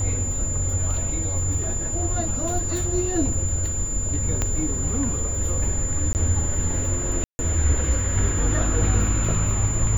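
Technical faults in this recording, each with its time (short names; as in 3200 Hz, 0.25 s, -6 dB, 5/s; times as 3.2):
tone 7100 Hz -27 dBFS
4.42 pop -9 dBFS
6.13–6.15 gap 19 ms
7.24–7.39 gap 0.15 s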